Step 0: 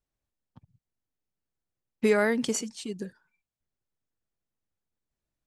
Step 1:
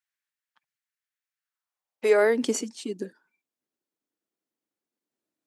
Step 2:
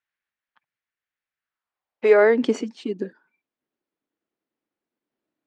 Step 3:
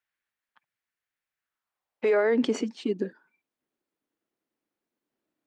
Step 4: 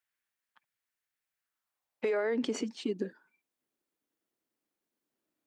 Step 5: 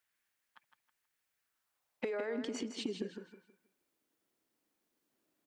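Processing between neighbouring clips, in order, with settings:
high-pass filter sweep 1,700 Hz → 290 Hz, 0:01.39–0:02.45
low-pass filter 2,800 Hz 12 dB per octave; level +5 dB
brickwall limiter −16 dBFS, peak gain reduction 10.5 dB
downward compressor 4 to 1, threshold −25 dBFS, peak gain reduction 5.5 dB; high-shelf EQ 4,400 Hz +6 dB; level −3 dB
downward compressor 10 to 1, threshold −39 dBFS, peak gain reduction 12 dB; repeating echo 160 ms, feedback 30%, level −8 dB; level +4 dB

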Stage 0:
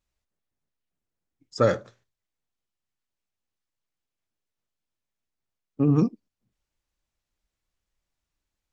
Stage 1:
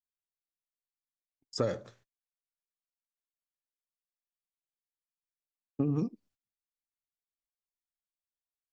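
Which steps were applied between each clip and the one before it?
noise gate −58 dBFS, range −30 dB
dynamic equaliser 1,400 Hz, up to −6 dB, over −40 dBFS, Q 1.8
downward compressor, threshold −27 dBFS, peak gain reduction 11 dB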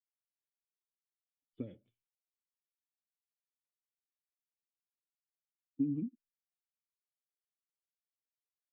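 spectral dynamics exaggerated over time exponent 1.5
formant resonators in series i
level +1 dB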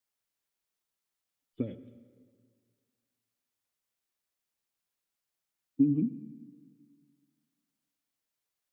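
convolution reverb RT60 1.9 s, pre-delay 73 ms, DRR 14 dB
level +8.5 dB

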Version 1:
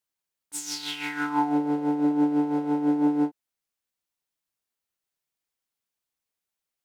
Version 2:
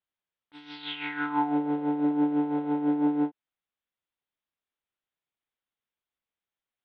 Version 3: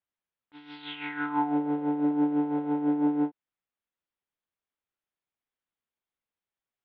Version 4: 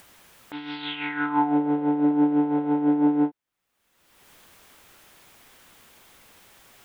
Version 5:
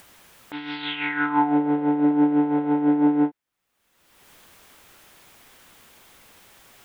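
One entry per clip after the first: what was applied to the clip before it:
elliptic low-pass filter 3,600 Hz, stop band 50 dB; level −1.5 dB
high-frequency loss of the air 210 metres
upward compression, threshold −32 dBFS; level +5 dB
dynamic equaliser 1,900 Hz, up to +4 dB, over −48 dBFS, Q 1.6; level +1.5 dB

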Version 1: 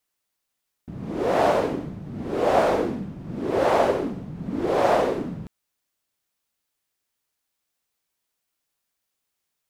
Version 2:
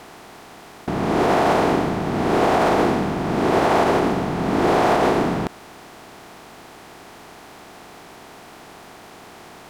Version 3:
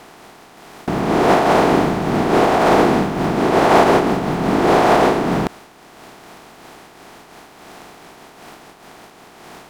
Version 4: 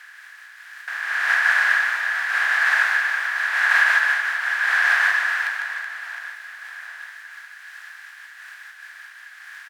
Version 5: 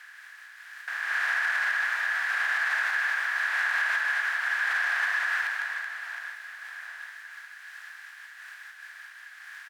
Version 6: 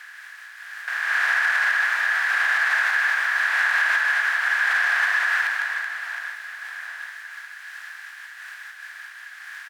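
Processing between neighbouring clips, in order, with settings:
compressor on every frequency bin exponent 0.4; parametric band 550 Hz −10.5 dB 0.36 octaves; boost into a limiter +10.5 dB; level −7 dB
parametric band 87 Hz −9 dB 0.32 octaves; in parallel at −6 dB: centre clipping without the shift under −32.5 dBFS; on the sum: amplitude modulation by smooth noise, depth 65%; level +4 dB
four-pole ladder high-pass 1,600 Hz, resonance 85%; reverse bouncing-ball delay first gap 150 ms, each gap 1.5×, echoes 5; level +5.5 dB
brickwall limiter −14.5 dBFS, peak gain reduction 9 dB; level −4 dB
backwards echo 257 ms −18.5 dB; level +6 dB

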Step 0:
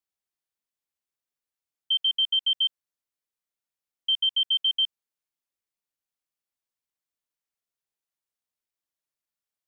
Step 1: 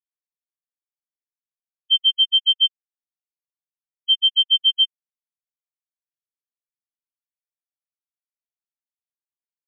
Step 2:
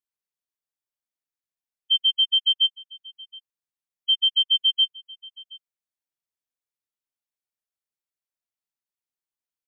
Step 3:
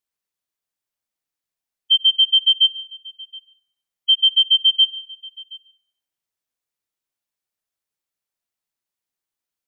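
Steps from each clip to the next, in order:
in parallel at +2 dB: output level in coarse steps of 23 dB; on the sum: every bin expanded away from the loudest bin 2.5 to 1; level +2 dB
brickwall limiter −14 dBFS, peak gain reduction 4 dB; single-tap delay 723 ms −22 dB
comb and all-pass reverb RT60 0.71 s, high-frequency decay 0.85×, pre-delay 60 ms, DRR 17.5 dB; level +5.5 dB

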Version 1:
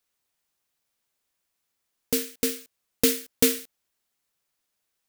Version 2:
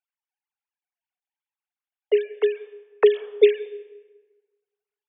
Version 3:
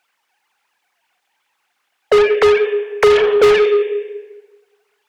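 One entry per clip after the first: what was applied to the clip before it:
three sine waves on the formant tracks; noise gate −55 dBFS, range −12 dB; comb and all-pass reverb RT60 1.3 s, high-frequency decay 0.7×, pre-delay 95 ms, DRR 19.5 dB; level +6 dB
mid-hump overdrive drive 38 dB, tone 2,500 Hz, clips at −3 dBFS

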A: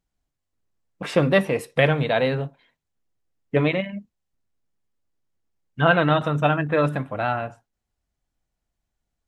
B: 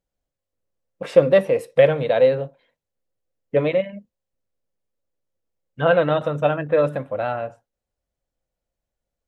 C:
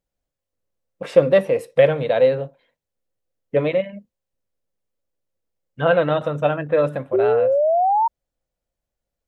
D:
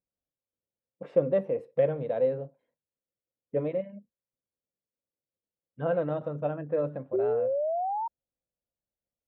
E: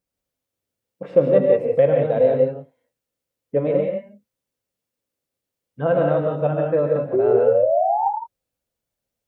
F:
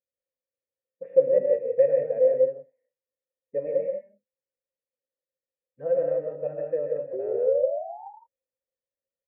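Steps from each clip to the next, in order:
parametric band 530 Hz +14 dB 0.45 octaves; level −4.5 dB
sound drawn into the spectrogram rise, 0:07.13–0:08.08, 370–940 Hz −17 dBFS
resonant band-pass 250 Hz, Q 0.51; level −8 dB
reverb whose tail is shaped and stops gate 200 ms rising, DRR 0.5 dB; level +8 dB
formant resonators in series e; level −2 dB

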